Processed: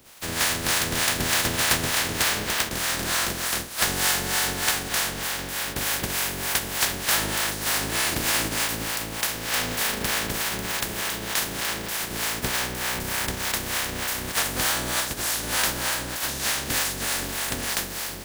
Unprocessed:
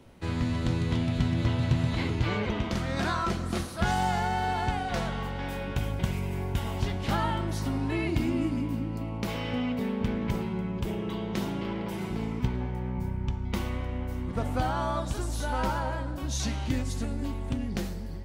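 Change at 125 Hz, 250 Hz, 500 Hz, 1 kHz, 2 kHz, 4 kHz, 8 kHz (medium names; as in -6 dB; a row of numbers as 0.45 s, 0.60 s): -7.0 dB, -5.0 dB, +1.0 dB, +2.0 dB, +11.5 dB, +14.5 dB, +20.5 dB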